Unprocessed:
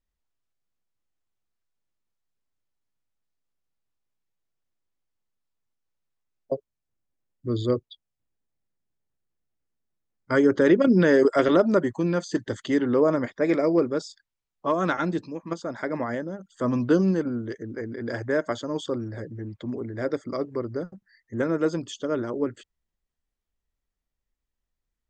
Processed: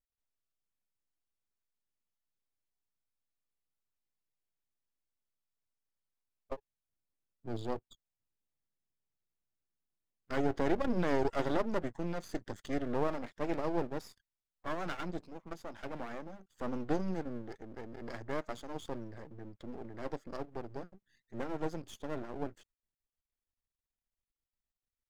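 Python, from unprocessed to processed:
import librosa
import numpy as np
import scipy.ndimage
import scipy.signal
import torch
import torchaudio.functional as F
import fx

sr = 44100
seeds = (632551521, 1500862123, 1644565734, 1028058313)

y = np.maximum(x, 0.0)
y = F.gain(torch.from_numpy(y), -8.5).numpy()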